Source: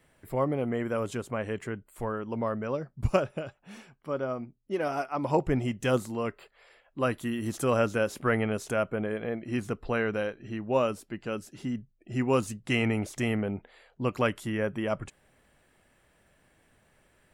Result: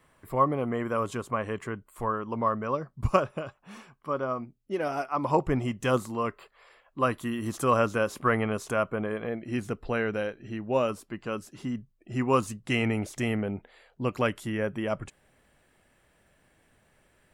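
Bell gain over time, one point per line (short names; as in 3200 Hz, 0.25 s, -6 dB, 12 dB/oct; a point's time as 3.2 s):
bell 1100 Hz 0.37 oct
+11.5 dB
from 4.43 s +0.5 dB
from 5.08 s +9.5 dB
from 9.27 s -1 dB
from 10.89 s +8.5 dB
from 12.65 s 0 dB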